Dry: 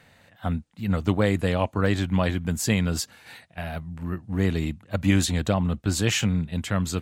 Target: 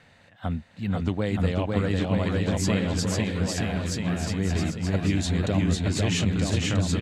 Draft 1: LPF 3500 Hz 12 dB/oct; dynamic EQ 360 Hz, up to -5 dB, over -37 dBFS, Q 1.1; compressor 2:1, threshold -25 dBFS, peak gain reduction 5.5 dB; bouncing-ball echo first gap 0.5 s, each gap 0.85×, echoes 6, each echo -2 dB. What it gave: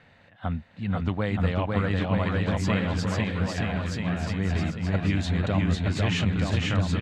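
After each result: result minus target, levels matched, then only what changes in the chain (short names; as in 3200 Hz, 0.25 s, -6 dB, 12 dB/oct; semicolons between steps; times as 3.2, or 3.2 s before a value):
8000 Hz band -9.0 dB; 1000 Hz band +3.0 dB
change: LPF 7300 Hz 12 dB/oct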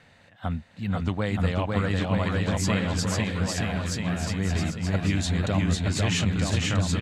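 1000 Hz band +3.0 dB
change: dynamic EQ 1200 Hz, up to -5 dB, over -37 dBFS, Q 1.1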